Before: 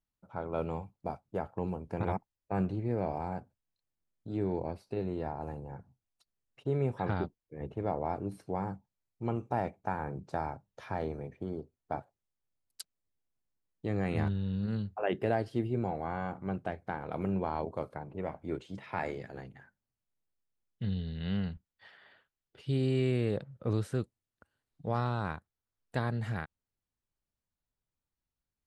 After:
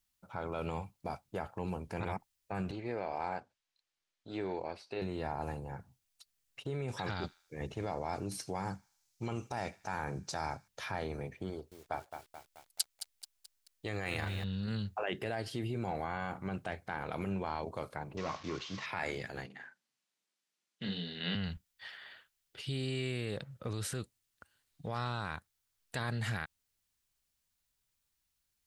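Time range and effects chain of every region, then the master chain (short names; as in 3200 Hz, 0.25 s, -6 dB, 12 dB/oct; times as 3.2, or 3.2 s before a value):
2.71–5.02 LPF 5300 Hz + tone controls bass -13 dB, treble -1 dB
6.88–10.68 bell 5900 Hz +11 dB 1.1 oct + thin delay 79 ms, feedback 44%, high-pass 1700 Hz, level -24 dB
11.5–14.44 bell 180 Hz -9 dB 1.5 oct + lo-fi delay 0.216 s, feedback 55%, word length 10-bit, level -11 dB
18.17–18.86 delta modulation 32 kbps, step -51.5 dBFS + HPF 77 Hz + bell 1100 Hz +15 dB 0.22 oct
19.46–21.35 HPF 180 Hz 24 dB/oct + air absorption 56 m + doubler 40 ms -5 dB
whole clip: low shelf 150 Hz +4.5 dB; limiter -27.5 dBFS; tilt shelf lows -8 dB, about 1300 Hz; gain +5.5 dB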